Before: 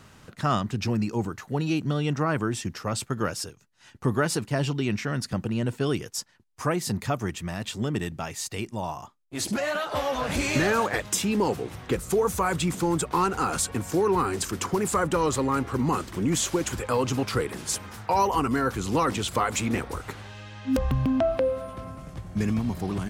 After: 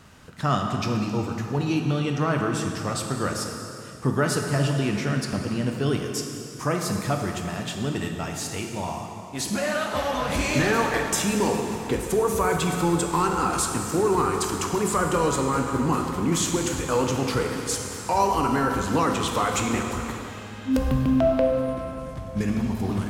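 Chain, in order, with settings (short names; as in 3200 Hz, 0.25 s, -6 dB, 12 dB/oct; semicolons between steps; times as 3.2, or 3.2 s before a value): plate-style reverb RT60 2.8 s, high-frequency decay 0.85×, DRR 2 dB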